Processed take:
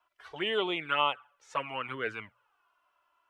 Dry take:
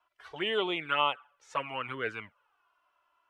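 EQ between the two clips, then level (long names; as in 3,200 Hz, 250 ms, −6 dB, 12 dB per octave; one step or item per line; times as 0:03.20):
mains-hum notches 60/120 Hz
0.0 dB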